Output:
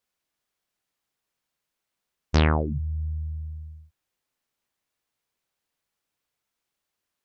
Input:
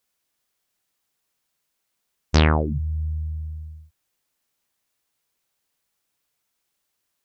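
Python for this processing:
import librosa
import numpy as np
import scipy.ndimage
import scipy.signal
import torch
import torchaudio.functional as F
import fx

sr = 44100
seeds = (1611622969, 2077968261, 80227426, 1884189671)

y = fx.high_shelf(x, sr, hz=5100.0, db=-7.0)
y = y * librosa.db_to_amplitude(-3.0)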